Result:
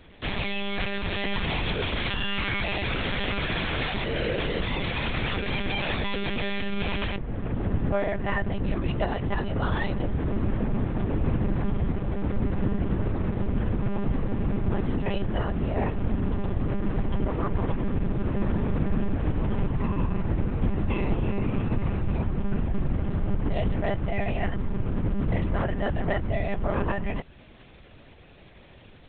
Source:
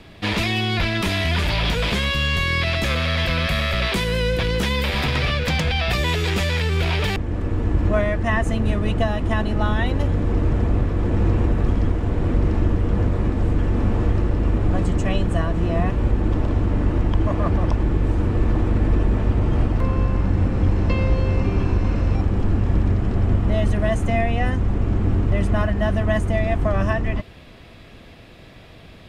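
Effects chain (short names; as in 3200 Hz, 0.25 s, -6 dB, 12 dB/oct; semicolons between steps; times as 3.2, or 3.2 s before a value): monotone LPC vocoder at 8 kHz 200 Hz; gain -6.5 dB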